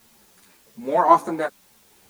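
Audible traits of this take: tremolo triangle 1.1 Hz, depth 55%; a quantiser's noise floor 10-bit, dither triangular; a shimmering, thickened sound

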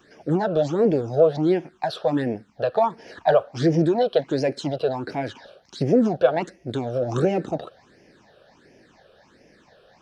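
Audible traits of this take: phasing stages 8, 1.4 Hz, lowest notch 260–1200 Hz

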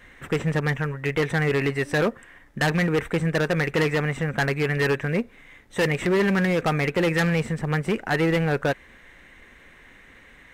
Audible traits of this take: noise floor -51 dBFS; spectral tilt -5.5 dB/oct

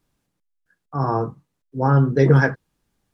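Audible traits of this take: noise floor -76 dBFS; spectral tilt -5.5 dB/oct

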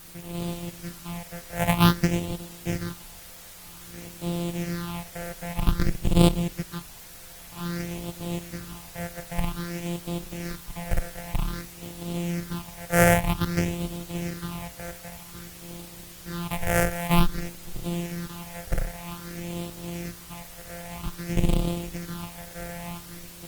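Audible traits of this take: a buzz of ramps at a fixed pitch in blocks of 256 samples; phasing stages 6, 0.52 Hz, lowest notch 270–1700 Hz; a quantiser's noise floor 8-bit, dither triangular; Opus

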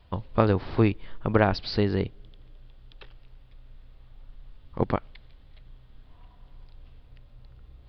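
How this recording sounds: noise floor -54 dBFS; spectral tilt -6.0 dB/oct

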